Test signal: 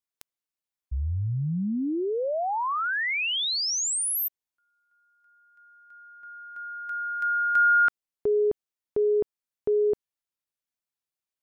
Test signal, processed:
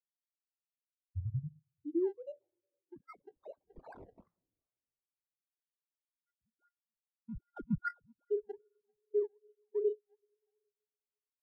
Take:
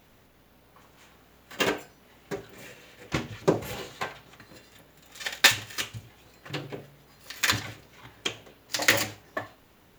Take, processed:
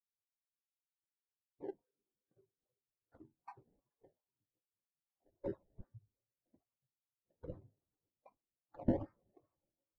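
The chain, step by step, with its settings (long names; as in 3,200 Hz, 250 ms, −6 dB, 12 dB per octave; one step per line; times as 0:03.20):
time-frequency cells dropped at random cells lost 70%
coupled-rooms reverb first 0.32 s, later 4.6 s, from −18 dB, DRR 3.5 dB
sample-and-hold swept by an LFO 25×, swing 100% 2.5 Hz
every bin expanded away from the loudest bin 2.5 to 1
level −7.5 dB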